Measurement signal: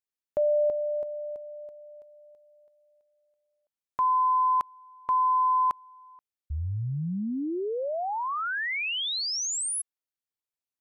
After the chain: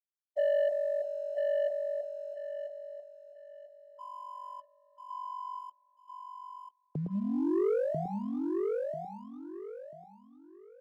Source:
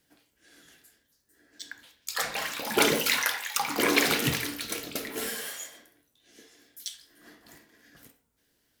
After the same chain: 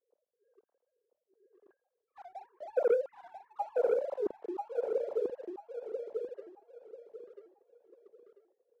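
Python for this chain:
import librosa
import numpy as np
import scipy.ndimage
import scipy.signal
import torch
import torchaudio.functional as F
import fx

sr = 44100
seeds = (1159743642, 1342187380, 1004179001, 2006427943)

y = fx.sine_speech(x, sr)
y = fx.ladder_lowpass(y, sr, hz=540.0, resonance_pct=35)
y = fx.peak_eq(y, sr, hz=230.0, db=3.5, octaves=0.49)
y = fx.leveller(y, sr, passes=1)
y = fx.echo_feedback(y, sr, ms=991, feedback_pct=27, wet_db=-3.5)
y = y * librosa.db_to_amplitude(2.0)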